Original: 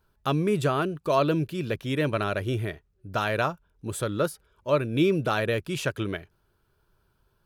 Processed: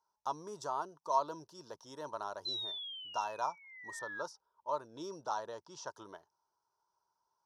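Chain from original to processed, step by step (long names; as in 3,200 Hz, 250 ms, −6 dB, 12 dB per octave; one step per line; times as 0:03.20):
0:03.99–0:05.87: low-pass that shuts in the quiet parts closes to 2,600 Hz, open at −17 dBFS
0:02.45–0:04.22: sound drawn into the spectrogram fall 1,600–4,100 Hz −22 dBFS
pair of resonant band-passes 2,300 Hz, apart 2.6 octaves
level +2 dB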